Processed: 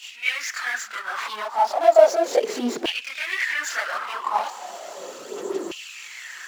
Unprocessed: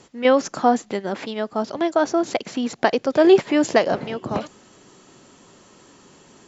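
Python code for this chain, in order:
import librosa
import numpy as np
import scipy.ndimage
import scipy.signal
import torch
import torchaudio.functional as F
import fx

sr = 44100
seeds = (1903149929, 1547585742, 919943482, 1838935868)

y = fx.power_curve(x, sr, exponent=0.5)
y = fx.chorus_voices(y, sr, voices=6, hz=1.5, base_ms=26, depth_ms=3.0, mix_pct=65)
y = fx.filter_lfo_highpass(y, sr, shape='saw_down', hz=0.35, low_hz=330.0, high_hz=2900.0, q=7.0)
y = F.gain(torch.from_numpy(y), -10.0).numpy()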